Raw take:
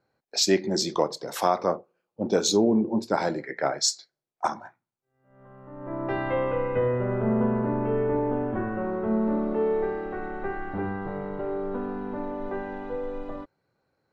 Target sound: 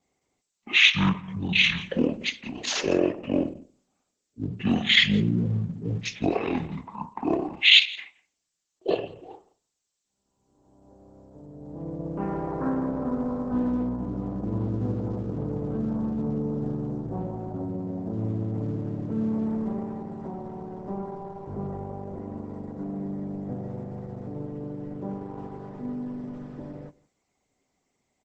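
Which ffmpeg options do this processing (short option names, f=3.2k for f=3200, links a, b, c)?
-filter_complex "[0:a]aemphasis=mode=production:type=bsi,asetrate=22050,aresample=44100,aecho=1:1:170:0.0708,acrossover=split=480|4200[a][b][c];[c]acompressor=threshold=-37dB:ratio=8[d];[a][b][d]amix=inputs=3:normalize=0" -ar 48000 -c:a libopus -b:a 10k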